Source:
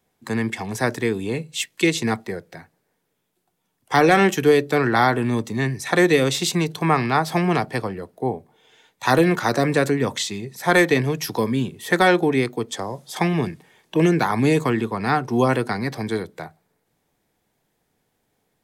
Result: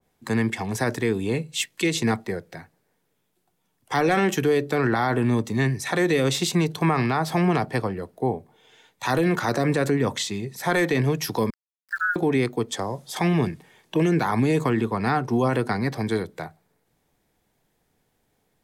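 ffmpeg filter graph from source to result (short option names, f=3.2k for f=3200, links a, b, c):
-filter_complex "[0:a]asettb=1/sr,asplit=3[a][b][c];[a]atrim=end=11.504[d];[b]atrim=start=11.5:end=12.16,asetpts=PTS-STARTPTS,afade=t=in:d=0.004:c=qsin,afade=t=out:st=0.656:d=0.004:c=qsin,asuperpass=centerf=1500:order=20:qfactor=3.4,aeval=exprs='val(0)*gte(abs(val(0)),0.00708)':c=same[e];[c]atrim=start=12.156[f];[d][e]acrossfade=d=0.004:c1=hsin:c2=qsin[g];[g][f]acrossfade=d=0.004:c1=qsin:c2=hsin,lowshelf=f=65:g=7.5,alimiter=limit=-12.5dB:level=0:latency=1:release=37,adynamicequalizer=threshold=0.02:dfrequency=1800:dqfactor=0.7:tfrequency=1800:tqfactor=0.7:attack=5:release=100:ratio=0.375:range=1.5:mode=cutabove:tftype=highshelf"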